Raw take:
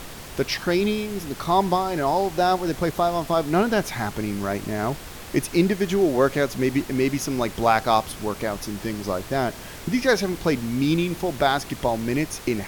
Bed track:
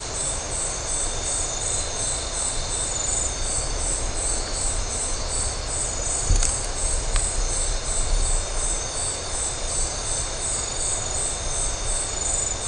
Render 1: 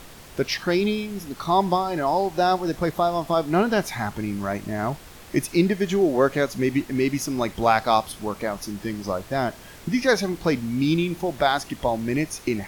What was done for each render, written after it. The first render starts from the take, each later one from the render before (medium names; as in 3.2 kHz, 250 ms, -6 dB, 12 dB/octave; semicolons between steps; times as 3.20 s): noise print and reduce 6 dB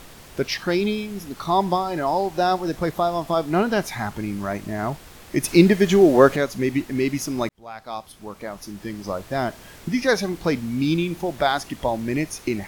5.44–6.36 s: gain +6 dB; 7.49–9.38 s: fade in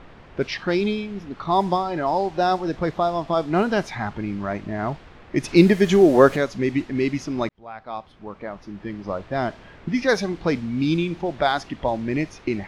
level-controlled noise filter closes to 2.1 kHz, open at -12.5 dBFS; treble shelf 8.9 kHz -7.5 dB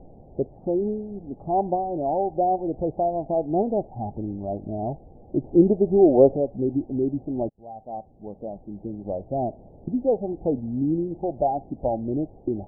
Chebyshev low-pass 800 Hz, order 6; dynamic bell 180 Hz, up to -7 dB, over -37 dBFS, Q 2.3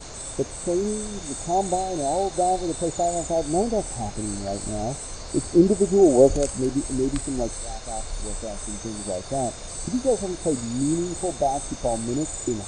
add bed track -9.5 dB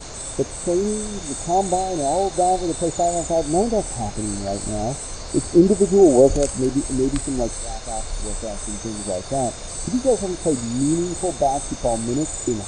trim +3.5 dB; peak limiter -3 dBFS, peak gain reduction 2.5 dB